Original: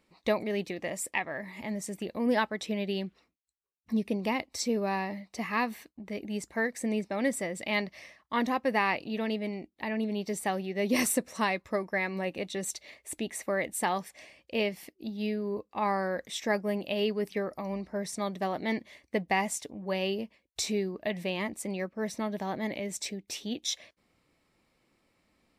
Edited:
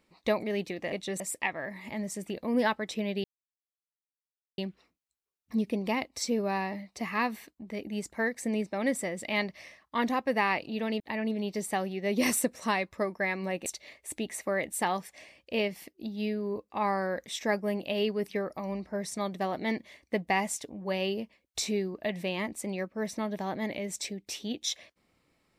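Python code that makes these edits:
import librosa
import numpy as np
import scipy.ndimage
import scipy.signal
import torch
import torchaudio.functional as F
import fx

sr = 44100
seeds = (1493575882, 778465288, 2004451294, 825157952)

y = fx.edit(x, sr, fx.insert_silence(at_s=2.96, length_s=1.34),
    fx.cut(start_s=9.38, length_s=0.35),
    fx.move(start_s=12.39, length_s=0.28, to_s=0.92), tone=tone)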